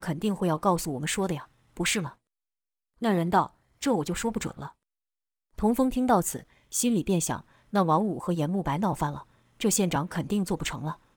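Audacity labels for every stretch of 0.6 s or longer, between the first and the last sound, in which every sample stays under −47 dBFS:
2.130000	3.010000	silence
4.710000	5.580000	silence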